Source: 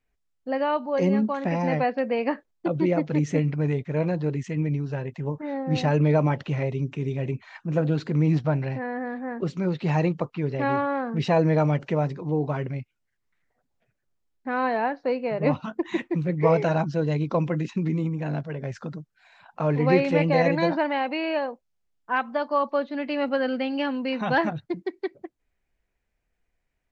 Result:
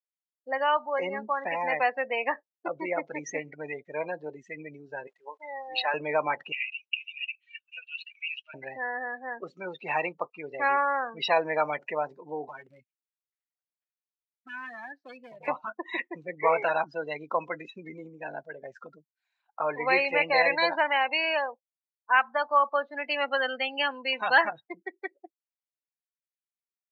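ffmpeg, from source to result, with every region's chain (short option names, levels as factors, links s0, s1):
-filter_complex "[0:a]asettb=1/sr,asplit=3[s0][s1][s2];[s0]atrim=end=5.074[s3];[s1]atrim=start=5.07:end=5.94,asetpts=PTS-STARTPTS,afade=t=in:d=0.004:c=qsin,afade=t=out:st=0.866:d=0.004:c=qsin,aeval=exprs='val(0)*gte(abs(val(0)),0.00398)':c=same,highpass=610,lowpass=5100[s4];[s2]atrim=start=5.936[s5];[s3][s4]acrossfade=d=0.004:c1=hsin:c2=qsin[s6];[s6][s5]acrossfade=d=0.004:c1=qsin:c2=hsin,asettb=1/sr,asplit=3[s7][s8][s9];[s7]atrim=end=6.524[s10];[s8]atrim=start=6.52:end=8.54,asetpts=PTS-STARTPTS,afade=t=in:d=0.004:c=qsin,afade=t=out:st=2.016:d=0.004:c=qsin,highpass=f=2800:t=q:w=7.3,equalizer=f=5300:w=0.76:g=-8.5[s11];[s9]atrim=start=8.536[s12];[s10][s11]acrossfade=d=0.004:c1=hsin:c2=qsin[s13];[s13][s12]acrossfade=d=0.004:c1=qsin:c2=hsin,asettb=1/sr,asplit=3[s14][s15][s16];[s14]atrim=end=12.484[s17];[s15]atrim=start=12.48:end=15.48,asetpts=PTS-STARTPTS,afade=t=in:d=0.004:c=qsin,afade=t=out:st=2.996:d=0.004:c=qsin,asubboost=boost=9:cutoff=160,acrossover=split=300|1800[s18][s19][s20];[s18]acompressor=threshold=0.02:ratio=4[s21];[s19]acompressor=threshold=0.00891:ratio=4[s22];[s20]acompressor=threshold=0.01:ratio=4[s23];[s21][s22][s23]amix=inputs=3:normalize=0,aeval=exprs='0.0355*(abs(mod(val(0)/0.0355+3,4)-2)-1)':c=same[s24];[s16]atrim=start=15.476[s25];[s17][s24]acrossfade=d=0.004:c1=hsin:c2=qsin[s26];[s26][s25]acrossfade=d=0.004:c1=qsin:c2=hsin,afftdn=nr=32:nf=-34,highpass=920,highshelf=f=3800:g=9,volume=1.68"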